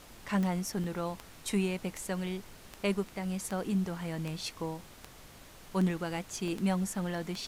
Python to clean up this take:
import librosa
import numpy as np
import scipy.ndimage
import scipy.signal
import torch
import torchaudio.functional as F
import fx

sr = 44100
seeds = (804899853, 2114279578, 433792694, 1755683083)

y = fx.fix_declick_ar(x, sr, threshold=10.0)
y = fx.fix_interpolate(y, sr, at_s=(0.84, 2.51, 6.48), length_ms=2.1)
y = fx.noise_reduce(y, sr, print_start_s=5.06, print_end_s=5.56, reduce_db=25.0)